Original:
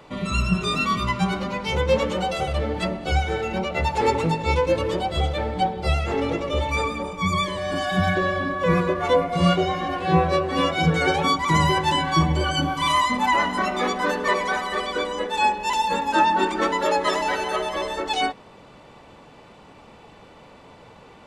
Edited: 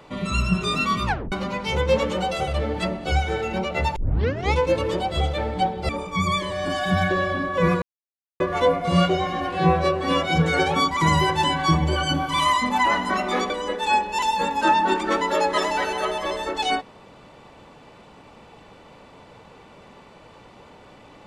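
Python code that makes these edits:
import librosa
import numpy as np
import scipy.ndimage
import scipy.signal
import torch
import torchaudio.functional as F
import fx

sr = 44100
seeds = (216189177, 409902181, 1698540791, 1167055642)

y = fx.edit(x, sr, fx.tape_stop(start_s=1.06, length_s=0.26),
    fx.tape_start(start_s=3.96, length_s=0.57),
    fx.cut(start_s=5.89, length_s=1.06),
    fx.insert_silence(at_s=8.88, length_s=0.58),
    fx.cut(start_s=13.98, length_s=1.03), tone=tone)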